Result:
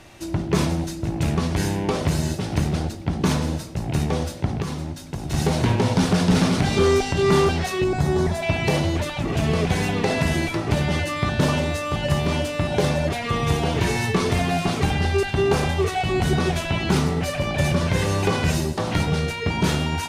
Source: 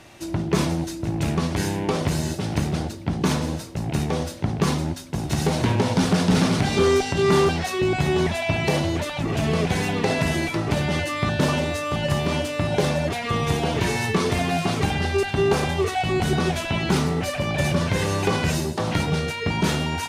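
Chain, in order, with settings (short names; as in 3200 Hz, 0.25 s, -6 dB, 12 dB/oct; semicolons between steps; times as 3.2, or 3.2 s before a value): 7.84–8.43 bell 2700 Hz -12.5 dB 0.8 oct; reverb RT60 0.70 s, pre-delay 50 ms, DRR 16 dB; 4.6–5.34 compressor 4:1, threshold -27 dBFS, peak gain reduction 10 dB; low shelf 64 Hz +11 dB; de-hum 54.04 Hz, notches 5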